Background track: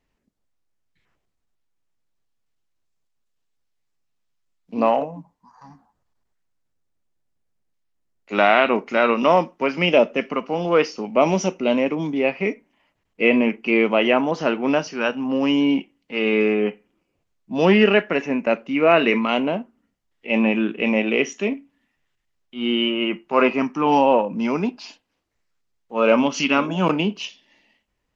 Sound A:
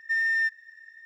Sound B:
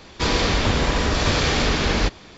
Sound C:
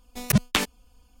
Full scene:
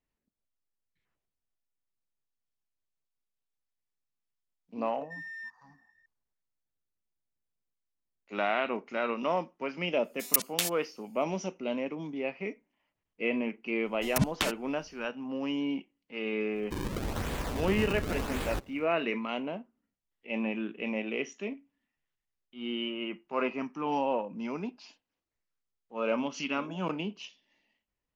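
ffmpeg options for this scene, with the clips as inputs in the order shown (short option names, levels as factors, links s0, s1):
-filter_complex "[3:a]asplit=2[s0][s1];[0:a]volume=0.211[s2];[s0]aderivative[s3];[2:a]acrusher=samples=37:mix=1:aa=0.000001:lfo=1:lforange=59.2:lforate=0.92[s4];[1:a]atrim=end=1.05,asetpts=PTS-STARTPTS,volume=0.133,afade=t=in:d=0.004:c=hsin,afade=t=out:st=1.046:d=0.004:c=hsin,adelay=220941S[s5];[s3]atrim=end=1.2,asetpts=PTS-STARTPTS,afade=t=in:d=0.004:c=hsin,afade=t=out:st=1.196:d=0.004:c=hsin,adelay=10040[s6];[s1]atrim=end=1.2,asetpts=PTS-STARTPTS,volume=0.447,afade=t=in:d=0.004:c=hsin,afade=t=out:st=1.196:d=0.004:c=hsin,adelay=13860[s7];[s4]atrim=end=2.37,asetpts=PTS-STARTPTS,volume=0.2,afade=t=in:d=0.05,afade=t=out:st=2.32:d=0.05,adelay=16510[s8];[s2][s5][s6][s7][s8]amix=inputs=5:normalize=0"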